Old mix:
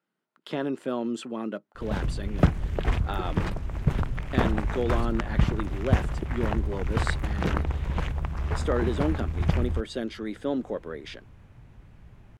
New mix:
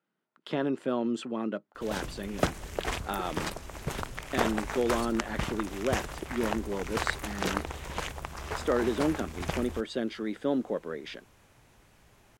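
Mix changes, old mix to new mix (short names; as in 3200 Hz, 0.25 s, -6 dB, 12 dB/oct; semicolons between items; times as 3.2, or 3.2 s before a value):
speech: add high shelf 8400 Hz -7 dB; background: add tone controls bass -14 dB, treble +13 dB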